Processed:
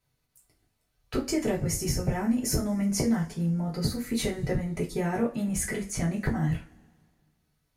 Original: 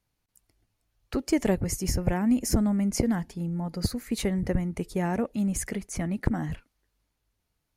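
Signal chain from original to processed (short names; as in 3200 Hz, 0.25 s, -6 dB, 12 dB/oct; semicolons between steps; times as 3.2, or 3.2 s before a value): compressor, threshold -25 dBFS, peak gain reduction 8 dB; two-slope reverb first 0.26 s, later 1.9 s, from -27 dB, DRR -4.5 dB; gain -2.5 dB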